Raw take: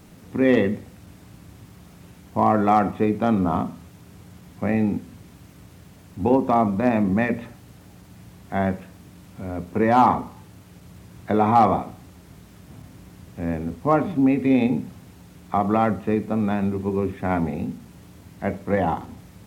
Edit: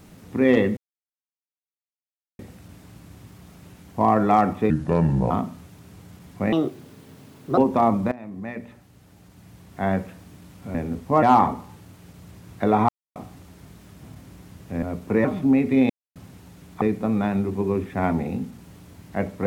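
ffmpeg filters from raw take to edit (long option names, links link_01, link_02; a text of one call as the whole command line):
ffmpeg -i in.wav -filter_complex "[0:a]asplit=16[link_01][link_02][link_03][link_04][link_05][link_06][link_07][link_08][link_09][link_10][link_11][link_12][link_13][link_14][link_15][link_16];[link_01]atrim=end=0.77,asetpts=PTS-STARTPTS,afade=type=out:start_time=0.766:duration=0.004:curve=hsin,apad=pad_dur=1.62[link_17];[link_02]atrim=start=0.77:end=3.084,asetpts=PTS-STARTPTS,afade=type=in:duration=0.004:curve=hsin[link_18];[link_03]atrim=start=3.08:end=3.52,asetpts=PTS-STARTPTS,asetrate=32193,aresample=44100[link_19];[link_04]atrim=start=3.516:end=4.744[link_20];[link_05]atrim=start=4.74:end=6.31,asetpts=PTS-STARTPTS,asetrate=65709,aresample=44100[link_21];[link_06]atrim=start=6.306:end=6.85,asetpts=PTS-STARTPTS,afade=type=out:start_time=0.54:duration=0.004:curve=hsin:silence=0.0749894[link_22];[link_07]atrim=start=6.85:end=9.482,asetpts=PTS-STARTPTS,afade=type=in:duration=1.9:silence=0.0749894[link_23];[link_08]atrim=start=13.498:end=13.982[link_24];[link_09]atrim=start=9.898:end=11.56,asetpts=PTS-STARTPTS,afade=type=out:start_time=1.658:duration=0.004:curve=hsin[link_25];[link_10]atrim=start=11.56:end=11.83,asetpts=PTS-STARTPTS,volume=0[link_26];[link_11]atrim=start=11.83:end=13.502,asetpts=PTS-STARTPTS,afade=type=in:duration=0.004:curve=hsin[link_27];[link_12]atrim=start=9.478:end=9.902[link_28];[link_13]atrim=start=13.978:end=14.63,asetpts=PTS-STARTPTS,afade=type=out:start_time=0.648:duration=0.004:curve=hsin[link_29];[link_14]atrim=start=14.63:end=14.89,asetpts=PTS-STARTPTS,volume=0[link_30];[link_15]atrim=start=14.89:end=15.552,asetpts=PTS-STARTPTS,afade=type=in:duration=0.004:curve=hsin[link_31];[link_16]atrim=start=16.088[link_32];[link_17][link_18]concat=n=2:v=0:a=1[link_33];[link_33][link_19]acrossfade=duration=0.004:curve1=hsin:curve2=hsin[link_34];[link_34][link_20]acrossfade=duration=0.004:curve1=hsin:curve2=hsin[link_35];[link_35][link_21]acrossfade=duration=0.004:curve1=hsin:curve2=hsin[link_36];[link_22][link_23]concat=n=2:v=0:a=1[link_37];[link_36][link_37]acrossfade=duration=0.004:curve1=hsin:curve2=hsin[link_38];[link_38][link_24]acrossfade=duration=0.004:curve1=hsin:curve2=hsin[link_39];[link_25][link_26][link_27]concat=n=3:v=0:a=1[link_40];[link_39][link_40]acrossfade=duration=0.004:curve1=hsin:curve2=hsin[link_41];[link_41][link_28]acrossfade=duration=0.004:curve1=hsin:curve2=hsin[link_42];[link_29][link_30][link_31]concat=n=3:v=0:a=1[link_43];[link_42][link_43]acrossfade=duration=0.004:curve1=hsin:curve2=hsin[link_44];[link_44][link_32]acrossfade=duration=0.004:curve1=hsin:curve2=hsin" out.wav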